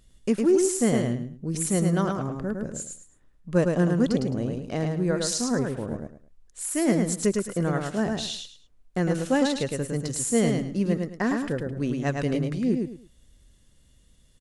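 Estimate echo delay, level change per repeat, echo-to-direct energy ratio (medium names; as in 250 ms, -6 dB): 107 ms, -12.0 dB, -3.5 dB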